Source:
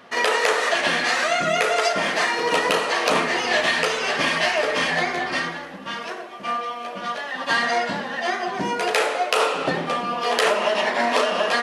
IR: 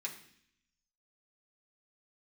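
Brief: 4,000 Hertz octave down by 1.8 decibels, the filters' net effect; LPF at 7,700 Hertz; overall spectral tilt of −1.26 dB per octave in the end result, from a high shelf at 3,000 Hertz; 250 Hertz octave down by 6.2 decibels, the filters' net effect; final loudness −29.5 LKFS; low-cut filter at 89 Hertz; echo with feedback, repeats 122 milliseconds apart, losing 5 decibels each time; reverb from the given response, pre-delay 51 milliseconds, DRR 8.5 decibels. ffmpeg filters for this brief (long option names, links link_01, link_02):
-filter_complex "[0:a]highpass=89,lowpass=7700,equalizer=frequency=250:width_type=o:gain=-8.5,highshelf=frequency=3000:gain=6,equalizer=frequency=4000:width_type=o:gain=-7,aecho=1:1:122|244|366|488|610|732|854:0.562|0.315|0.176|0.0988|0.0553|0.031|0.0173,asplit=2[link_01][link_02];[1:a]atrim=start_sample=2205,adelay=51[link_03];[link_02][link_03]afir=irnorm=-1:irlink=0,volume=-8.5dB[link_04];[link_01][link_04]amix=inputs=2:normalize=0,volume=-9.5dB"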